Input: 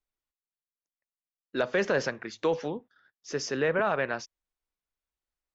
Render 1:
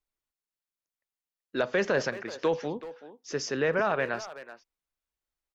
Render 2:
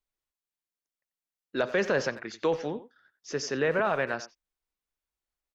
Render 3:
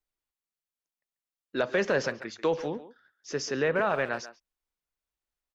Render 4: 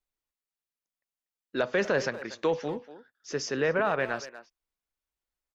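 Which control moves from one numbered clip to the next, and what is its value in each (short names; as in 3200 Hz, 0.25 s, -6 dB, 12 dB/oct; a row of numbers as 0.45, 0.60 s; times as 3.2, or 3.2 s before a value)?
speakerphone echo, time: 380, 90, 140, 240 ms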